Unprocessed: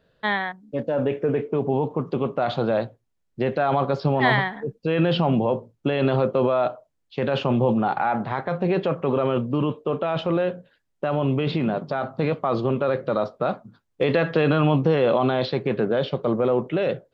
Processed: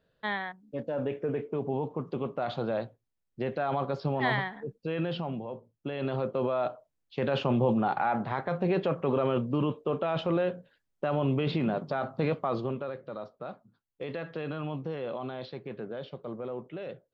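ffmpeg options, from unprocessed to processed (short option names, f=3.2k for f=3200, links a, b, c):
-af "volume=3.5dB,afade=t=out:st=4.77:d=0.69:silence=0.375837,afade=t=in:st=5.46:d=1.79:silence=0.251189,afade=t=out:st=12.33:d=0.62:silence=0.281838"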